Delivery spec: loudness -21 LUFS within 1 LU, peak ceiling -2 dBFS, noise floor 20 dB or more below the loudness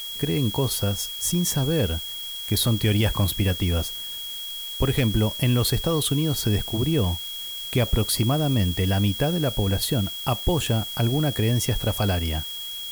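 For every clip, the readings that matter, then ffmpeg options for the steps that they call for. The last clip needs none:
steady tone 3300 Hz; tone level -32 dBFS; noise floor -34 dBFS; noise floor target -44 dBFS; loudness -23.5 LUFS; peak -10.5 dBFS; loudness target -21.0 LUFS
-> -af "bandreject=f=3.3k:w=30"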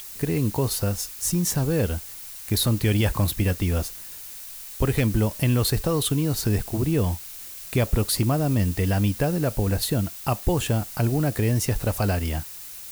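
steady tone none; noise floor -39 dBFS; noise floor target -44 dBFS
-> -af "afftdn=nr=6:nf=-39"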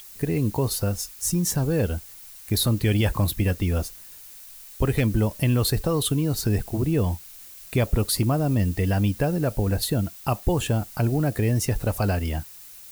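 noise floor -44 dBFS; noise floor target -45 dBFS
-> -af "afftdn=nr=6:nf=-44"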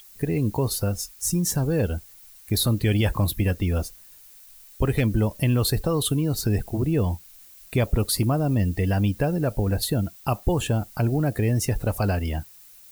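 noise floor -49 dBFS; loudness -24.5 LUFS; peak -11.5 dBFS; loudness target -21.0 LUFS
-> -af "volume=3.5dB"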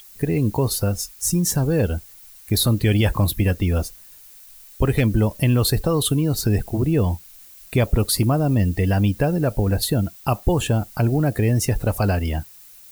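loudness -21.0 LUFS; peak -8.0 dBFS; noise floor -45 dBFS

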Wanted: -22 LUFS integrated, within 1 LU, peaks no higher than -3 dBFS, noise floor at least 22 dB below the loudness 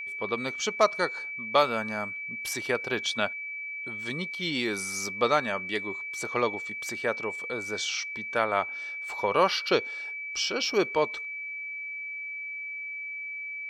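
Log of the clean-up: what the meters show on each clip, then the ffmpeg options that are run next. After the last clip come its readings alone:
steady tone 2300 Hz; tone level -34 dBFS; loudness -29.0 LUFS; peak -8.0 dBFS; loudness target -22.0 LUFS
-> -af "bandreject=f=2.3k:w=30"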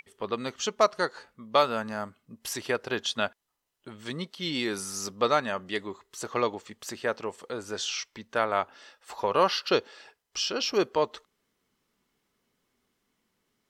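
steady tone none; loudness -29.5 LUFS; peak -8.5 dBFS; loudness target -22.0 LUFS
-> -af "volume=7.5dB,alimiter=limit=-3dB:level=0:latency=1"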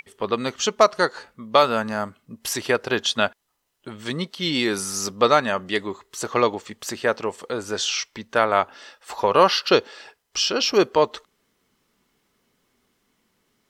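loudness -22.0 LUFS; peak -3.0 dBFS; noise floor -71 dBFS

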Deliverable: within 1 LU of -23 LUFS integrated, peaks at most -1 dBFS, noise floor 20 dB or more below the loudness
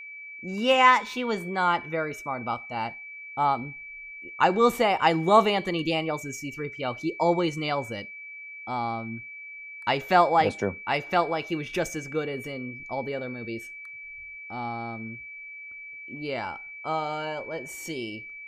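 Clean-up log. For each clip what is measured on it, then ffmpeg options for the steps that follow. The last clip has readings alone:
steady tone 2300 Hz; tone level -39 dBFS; loudness -26.5 LUFS; peak -5.5 dBFS; loudness target -23.0 LUFS
-> -af "bandreject=f=2.3k:w=30"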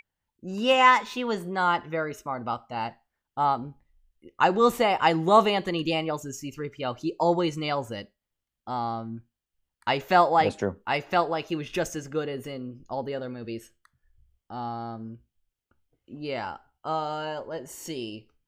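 steady tone none; loudness -26.5 LUFS; peak -6.0 dBFS; loudness target -23.0 LUFS
-> -af "volume=3.5dB"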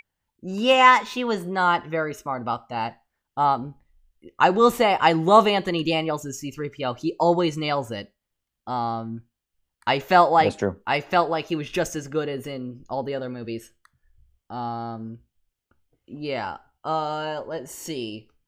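loudness -23.0 LUFS; peak -2.5 dBFS; noise floor -83 dBFS

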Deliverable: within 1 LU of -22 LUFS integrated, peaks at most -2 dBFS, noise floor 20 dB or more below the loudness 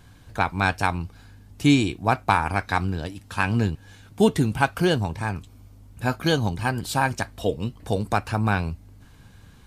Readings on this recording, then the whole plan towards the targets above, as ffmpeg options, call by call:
loudness -24.5 LUFS; peak -5.5 dBFS; loudness target -22.0 LUFS
-> -af "volume=2.5dB"

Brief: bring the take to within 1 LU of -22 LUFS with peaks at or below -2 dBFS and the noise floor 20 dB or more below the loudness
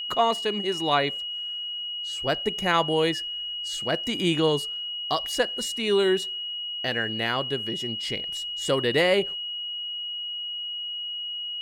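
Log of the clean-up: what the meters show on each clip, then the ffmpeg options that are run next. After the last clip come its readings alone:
steady tone 2900 Hz; tone level -30 dBFS; loudness -26.0 LUFS; peak -9.5 dBFS; loudness target -22.0 LUFS
-> -af "bandreject=f=2.9k:w=30"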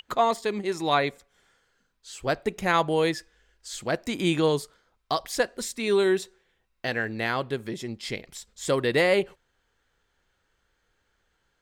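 steady tone none; loudness -26.5 LUFS; peak -9.5 dBFS; loudness target -22.0 LUFS
-> -af "volume=4.5dB"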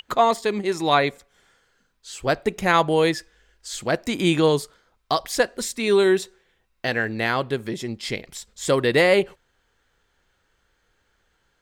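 loudness -22.0 LUFS; peak -5.0 dBFS; noise floor -69 dBFS

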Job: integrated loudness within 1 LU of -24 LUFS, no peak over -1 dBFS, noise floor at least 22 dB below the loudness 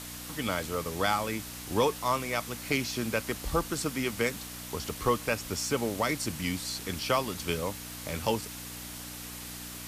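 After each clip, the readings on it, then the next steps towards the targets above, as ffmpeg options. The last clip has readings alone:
hum 60 Hz; harmonics up to 300 Hz; hum level -44 dBFS; noise floor -42 dBFS; noise floor target -54 dBFS; loudness -31.5 LUFS; peak -14.0 dBFS; loudness target -24.0 LUFS
-> -af "bandreject=f=60:t=h:w=4,bandreject=f=120:t=h:w=4,bandreject=f=180:t=h:w=4,bandreject=f=240:t=h:w=4,bandreject=f=300:t=h:w=4"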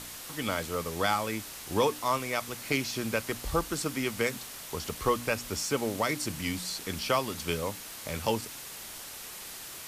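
hum none; noise floor -43 dBFS; noise floor target -54 dBFS
-> -af "afftdn=nr=11:nf=-43"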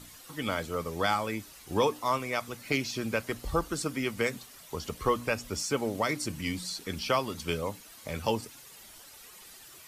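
noise floor -51 dBFS; noise floor target -54 dBFS
-> -af "afftdn=nr=6:nf=-51"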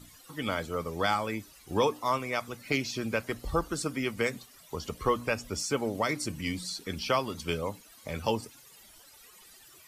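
noise floor -55 dBFS; loudness -32.0 LUFS; peak -14.5 dBFS; loudness target -24.0 LUFS
-> -af "volume=8dB"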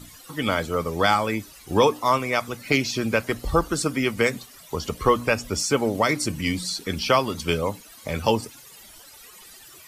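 loudness -24.0 LUFS; peak -6.5 dBFS; noise floor -47 dBFS

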